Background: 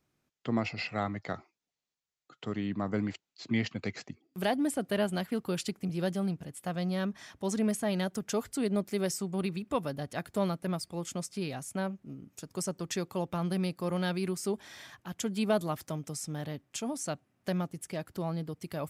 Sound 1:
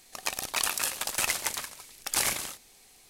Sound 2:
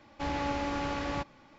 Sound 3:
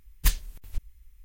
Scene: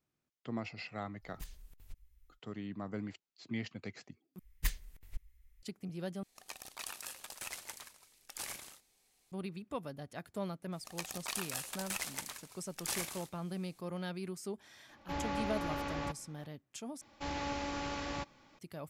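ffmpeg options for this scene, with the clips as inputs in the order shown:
-filter_complex "[3:a]asplit=2[a][b];[1:a]asplit=2[c][d];[2:a]asplit=2[e][f];[0:a]volume=-9dB[g];[a]acompressor=threshold=-28dB:ratio=6:attack=3.2:release=140:knee=1:detection=peak[h];[b]equalizer=f=2k:w=3.4:g=7[i];[f]highshelf=f=4.1k:g=10.5[j];[g]asplit=4[k][l][m][n];[k]atrim=end=4.394[o];[i]atrim=end=1.24,asetpts=PTS-STARTPTS,volume=-11dB[p];[l]atrim=start=5.626:end=6.234[q];[c]atrim=end=3.09,asetpts=PTS-STARTPTS,volume=-16dB[r];[m]atrim=start=9.316:end=17.014[s];[j]atrim=end=1.58,asetpts=PTS-STARTPTS,volume=-6.5dB[t];[n]atrim=start=18.586[u];[h]atrim=end=1.24,asetpts=PTS-STARTPTS,volume=-12.5dB,afade=t=in:d=0.1,afade=t=out:st=1.14:d=0.1,adelay=1160[v];[d]atrim=end=3.09,asetpts=PTS-STARTPTS,volume=-11dB,afade=t=in:d=0.004:c=hsin,afade=t=out:st=3.086:d=0.004:c=hsin,adelay=10720[w];[e]atrim=end=1.58,asetpts=PTS-STARTPTS,volume=-5dB,afade=t=in:d=0.004:c=hsin,afade=t=out:st=1.576:d=0.004:c=hsin,adelay=14890[x];[o][p]acrossfade=d=0.004:c1=hsin:c2=hsin[y];[y][q]acrossfade=d=0.004:c1=hsin:c2=hsin[z];[z][r]acrossfade=d=0.004:c1=hsin:c2=hsin[aa];[aa][s]acrossfade=d=0.004:c1=hsin:c2=hsin[ab];[ab][t]acrossfade=d=0.004:c1=hsin:c2=hsin[ac];[ac][u]acrossfade=d=0.004:c1=hsin:c2=hsin[ad];[ad][v][w][x]amix=inputs=4:normalize=0"

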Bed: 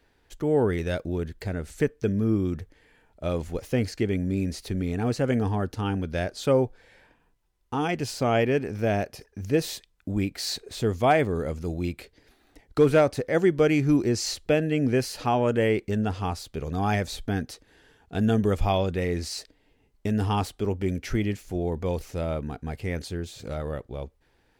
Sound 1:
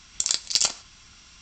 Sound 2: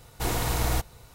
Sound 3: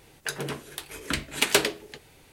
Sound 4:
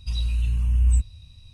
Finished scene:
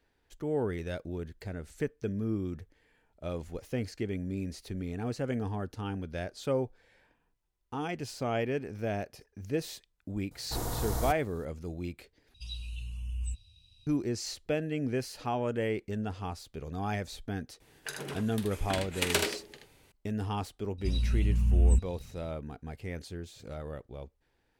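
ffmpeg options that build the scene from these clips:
-filter_complex "[4:a]asplit=2[a][b];[0:a]volume=-8.5dB[c];[2:a]equalizer=f=2.5k:w=1.4:g=-13.5[d];[a]highshelf=f=2.3k:t=q:w=3:g=7[e];[3:a]aecho=1:1:46|78:0.282|0.562[f];[b]equalizer=f=230:w=0.85:g=12.5[g];[c]asplit=2[h][i];[h]atrim=end=12.344[j];[e]atrim=end=1.53,asetpts=PTS-STARTPTS,volume=-16.5dB[k];[i]atrim=start=13.866[l];[d]atrim=end=1.14,asetpts=PTS-STARTPTS,volume=-6dB,afade=t=in:d=0.004:c=hsin,afade=t=out:st=1.136:d=0.004:c=hsin,adelay=10310[m];[f]atrim=end=2.32,asetpts=PTS-STARTPTS,volume=-8dB,afade=t=in:d=0.004:c=hsin,afade=t=out:st=2.316:d=0.004:c=hsin,adelay=17600[n];[g]atrim=end=1.53,asetpts=PTS-STARTPTS,volume=-5.5dB,afade=t=in:d=0.004:c=hsin,afade=t=out:st=1.526:d=0.004:c=hsin,adelay=20780[o];[j][k]acrossfade=d=0.004:c1=hsin:c2=hsin[p];[p][l]acrossfade=d=0.004:c1=hsin:c2=hsin[q];[q][m][n][o]amix=inputs=4:normalize=0"

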